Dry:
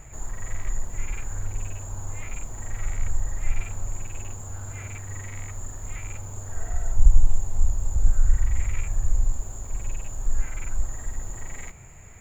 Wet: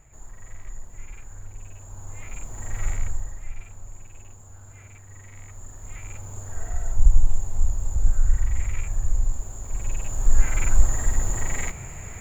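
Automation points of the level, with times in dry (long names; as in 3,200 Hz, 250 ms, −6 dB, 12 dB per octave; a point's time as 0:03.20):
0:01.60 −9.5 dB
0:02.89 +3 dB
0:03.48 −10 dB
0:05.09 −10 dB
0:06.36 −0.5 dB
0:09.56 −0.5 dB
0:10.59 +9.5 dB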